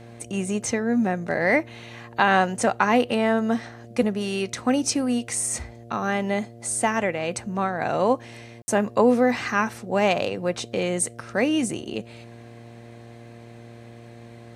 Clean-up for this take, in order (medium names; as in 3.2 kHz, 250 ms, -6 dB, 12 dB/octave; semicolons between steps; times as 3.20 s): de-hum 116.9 Hz, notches 6; room tone fill 8.62–8.68 s